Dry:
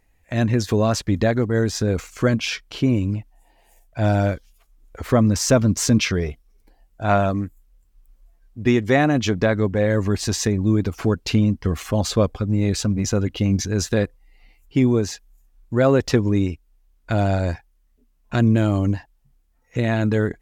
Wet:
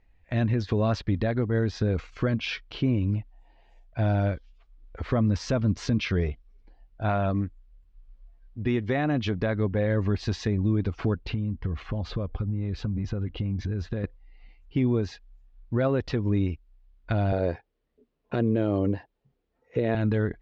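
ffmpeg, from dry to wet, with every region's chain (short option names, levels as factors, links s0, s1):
-filter_complex "[0:a]asettb=1/sr,asplit=3[s0][s1][s2];[s0]atrim=end=11.184[s3];[s1]atrim=start=11.18:end=14.04,asetpts=PTS-STARTPTS,afade=t=in:d=0.004:c=qsin,afade=t=out:st=2.856:d=0.004:c=qsin,lowpass=f=2300:p=1,lowshelf=f=120:g=5.5,acompressor=threshold=0.0794:ratio=10:attack=3.2:release=140:knee=1:detection=peak[s4];[s2]atrim=start=14.036[s5];[s3][s4]acrossfade=d=0.004:c1=hsin:c2=qsin[s6];[s6][s5]acrossfade=d=0.004:c1=qsin:c2=hsin,asettb=1/sr,asplit=3[s7][s8][s9];[s7]atrim=end=17.324[s10];[s8]atrim=start=17.32:end=19.95,asetpts=PTS-STARTPTS,afade=t=in:d=0.004:c=qsin,afade=t=out:st=2.626:d=0.004:c=qsin,highpass=110,equalizer=f=450:t=o:w=0.84:g=14[s11];[s9]atrim=start=19.946[s12];[s10][s11]acrossfade=d=0.004:c1=hsin:c2=qsin[s13];[s13][s12]acrossfade=d=0.004:c1=qsin:c2=hsin,lowpass=f=4300:w=0.5412,lowpass=f=4300:w=1.3066,lowshelf=f=100:g=7,alimiter=limit=0.299:level=0:latency=1:release=246,volume=0.596"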